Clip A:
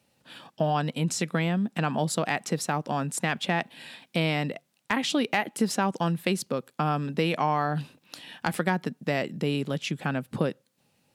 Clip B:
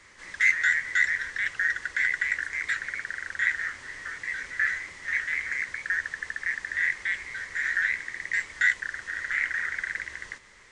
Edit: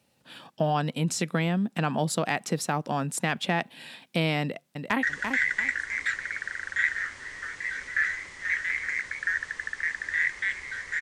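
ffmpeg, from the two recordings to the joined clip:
-filter_complex "[0:a]apad=whole_dur=11.01,atrim=end=11.01,atrim=end=5.032[a];[1:a]atrim=start=1.658:end=7.64[b];[a][b]acrossfade=d=0.004:c1=hsin:c2=hsin,asplit=2[c][d];[d]afade=t=in:st=4.41:d=0.01,afade=t=out:st=5.03:d=0.01,aecho=0:1:340|680|1020:0.530884|0.132721|0.0331803[e];[c][e]amix=inputs=2:normalize=0"

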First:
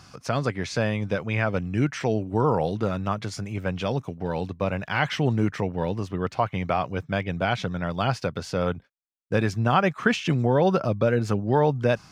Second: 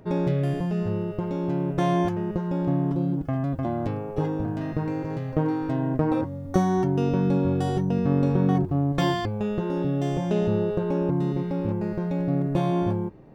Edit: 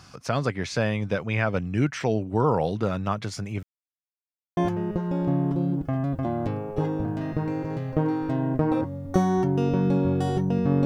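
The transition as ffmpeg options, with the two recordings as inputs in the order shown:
-filter_complex "[0:a]apad=whole_dur=10.85,atrim=end=10.85,asplit=2[a][b];[a]atrim=end=3.63,asetpts=PTS-STARTPTS,afade=t=out:st=3.626:d=0.004:c=hsin[c];[b]atrim=start=3.63:end=4.57,asetpts=PTS-STARTPTS,volume=0[d];[1:a]atrim=start=1.97:end=8.25,asetpts=PTS-STARTPTS,afade=t=in:d=0.004:c=hsin[e];[c][d][e]concat=n=3:v=0:a=1"

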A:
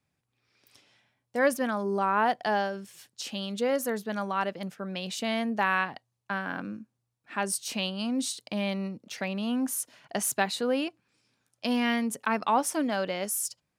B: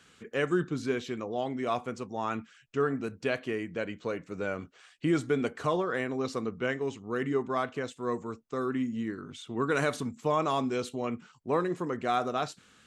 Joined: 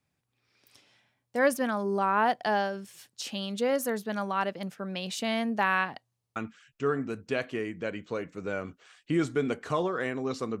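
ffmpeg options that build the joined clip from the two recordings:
-filter_complex "[0:a]apad=whole_dur=10.6,atrim=end=10.6,asplit=3[a][b][c];[a]atrim=end=6.242[d];[b]atrim=start=6.178:end=6.242[e];[c]atrim=start=6.178:end=6.242[f];[1:a]atrim=start=2.298:end=6.54[g];[d][e]acrossfade=d=0.004:c1=hsin:c2=hsin[h];[h][f]acrossfade=d=0.004:c1=hsin:c2=hsin[i];[i][g]acrossfade=d=0.004:c1=hsin:c2=hsin"

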